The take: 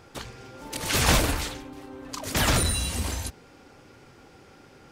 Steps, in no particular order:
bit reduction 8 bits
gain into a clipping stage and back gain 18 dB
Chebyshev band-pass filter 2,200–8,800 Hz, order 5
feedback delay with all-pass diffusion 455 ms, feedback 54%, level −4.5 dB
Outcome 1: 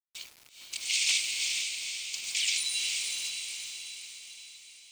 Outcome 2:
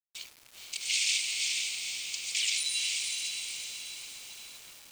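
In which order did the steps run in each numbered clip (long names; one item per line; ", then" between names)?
Chebyshev band-pass filter, then bit reduction, then feedback delay with all-pass diffusion, then gain into a clipping stage and back
feedback delay with all-pass diffusion, then gain into a clipping stage and back, then Chebyshev band-pass filter, then bit reduction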